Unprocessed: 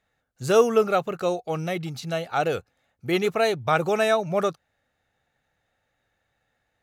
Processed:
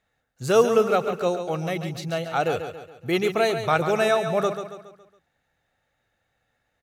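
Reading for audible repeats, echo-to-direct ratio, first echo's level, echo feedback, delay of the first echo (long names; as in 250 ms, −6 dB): 4, −8.0 dB, −9.0 dB, 45%, 139 ms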